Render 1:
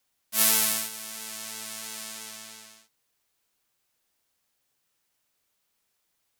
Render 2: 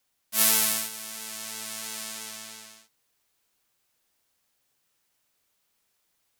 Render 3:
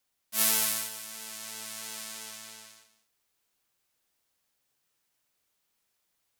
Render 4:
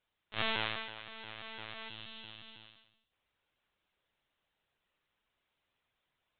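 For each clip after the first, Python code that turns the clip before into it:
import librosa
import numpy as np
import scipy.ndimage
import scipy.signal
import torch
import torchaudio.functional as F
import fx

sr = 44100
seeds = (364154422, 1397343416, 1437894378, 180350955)

y1 = fx.rider(x, sr, range_db=3, speed_s=2.0)
y1 = y1 * 10.0 ** (-1.0 / 20.0)
y2 = y1 + 10.0 ** (-14.0 / 20.0) * np.pad(y1, (int(198 * sr / 1000.0), 0))[:len(y1)]
y2 = y2 * 10.0 ** (-4.0 / 20.0)
y3 = fx.lpc_vocoder(y2, sr, seeds[0], excitation='pitch_kept', order=16)
y3 = fx.spec_box(y3, sr, start_s=1.89, length_s=1.23, low_hz=330.0, high_hz=2600.0, gain_db=-8)
y3 = y3 * 10.0 ** (1.0 / 20.0)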